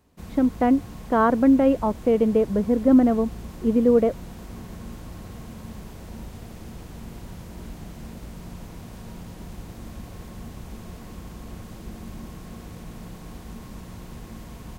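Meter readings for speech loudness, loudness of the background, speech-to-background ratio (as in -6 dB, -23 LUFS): -20.5 LUFS, -40.0 LUFS, 19.5 dB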